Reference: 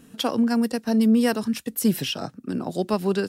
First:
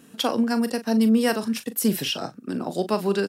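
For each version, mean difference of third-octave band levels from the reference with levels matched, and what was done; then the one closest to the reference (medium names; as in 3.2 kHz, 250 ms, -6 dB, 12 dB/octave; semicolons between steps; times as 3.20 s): 2.5 dB: high-pass 220 Hz 6 dB/octave; doubling 40 ms -12 dB; trim +1.5 dB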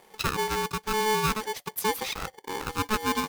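13.0 dB: graphic EQ 250/2000/8000 Hz -9/-8/-10 dB; polarity switched at an audio rate 650 Hz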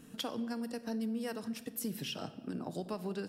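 5.0 dB: compression 3:1, threshold -34 dBFS, peak gain reduction 14 dB; simulated room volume 1300 m³, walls mixed, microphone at 0.48 m; trim -4.5 dB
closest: first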